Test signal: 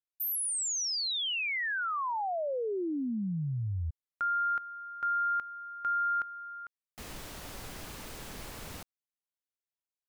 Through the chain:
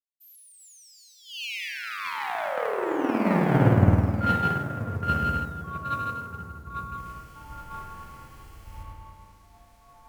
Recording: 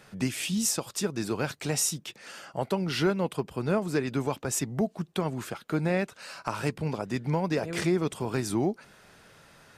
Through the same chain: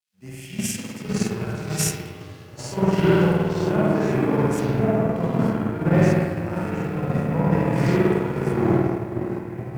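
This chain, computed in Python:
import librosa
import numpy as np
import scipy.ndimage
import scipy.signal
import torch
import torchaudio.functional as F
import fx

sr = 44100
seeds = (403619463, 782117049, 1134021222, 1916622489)

y = fx.low_shelf(x, sr, hz=180.0, db=3.5)
y = fx.hum_notches(y, sr, base_hz=50, count=8)
y = fx.echo_stepped(y, sr, ms=558, hz=260.0, octaves=1.4, feedback_pct=70, wet_db=-2.0)
y = fx.rev_spring(y, sr, rt60_s=3.5, pass_ms=(52,), chirp_ms=60, drr_db=-7.0)
y = fx.dynamic_eq(y, sr, hz=4300.0, q=0.94, threshold_db=-43.0, ratio=4.0, max_db=-4)
y = fx.notch(y, sr, hz=3700.0, q=5.4)
y = fx.quant_dither(y, sr, seeds[0], bits=8, dither='none')
y = fx.echo_pitch(y, sr, ms=338, semitones=-4, count=3, db_per_echo=-6.0)
y = fx.hpss(y, sr, part='percussive', gain_db=-13)
y = fx.cheby_harmonics(y, sr, harmonics=(5, 7), levels_db=(-27, -21), full_scale_db=-8.5)
y = fx.band_widen(y, sr, depth_pct=100)
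y = y * 10.0 ** (1.5 / 20.0)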